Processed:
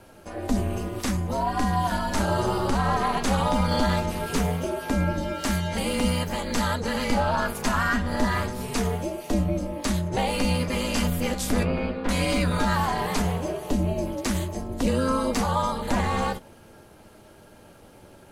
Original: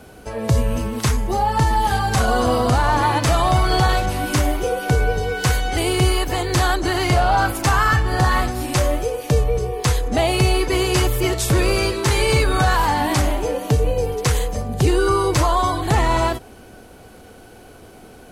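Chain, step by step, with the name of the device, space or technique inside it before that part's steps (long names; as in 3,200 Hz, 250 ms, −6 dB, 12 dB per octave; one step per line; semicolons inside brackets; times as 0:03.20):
0:11.63–0:12.09: high-frequency loss of the air 450 metres
alien voice (ring modulation 130 Hz; flanger 0.13 Hz, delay 8 ms, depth 3.6 ms, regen −51%)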